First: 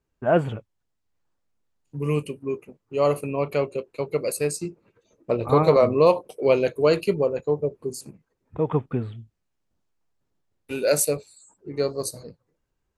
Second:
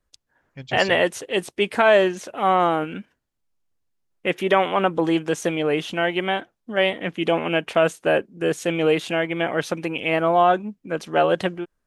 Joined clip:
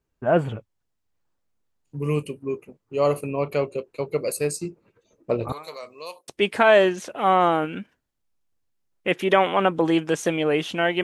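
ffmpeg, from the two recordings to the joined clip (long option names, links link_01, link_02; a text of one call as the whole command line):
ffmpeg -i cue0.wav -i cue1.wav -filter_complex "[0:a]asettb=1/sr,asplit=3[link_01][link_02][link_03];[link_01]atrim=end=5.524[link_04];[link_02]atrim=start=5.52:end=6.28,asetpts=PTS-STARTPTS,afade=type=in:duration=0.004:curve=qsin,afade=type=out:start_time=0.756:duration=0.004:curve=qsin,aderivative[link_05];[link_03]atrim=start=6.276[link_06];[link_04][link_05]acrossfade=duration=0.004:curve1=hsin:curve2=qsin[link_07];[link_07][link_06]acrossfade=duration=0.004:curve1=qsin:curve2=hsin,apad=whole_dur=11.03,atrim=end=11.03,atrim=end=6.282[link_08];[1:a]atrim=start=1.468:end=6.22[link_09];[link_08][link_09]acrossfade=duration=0.004:curve1=hsin:curve2=hsin" out.wav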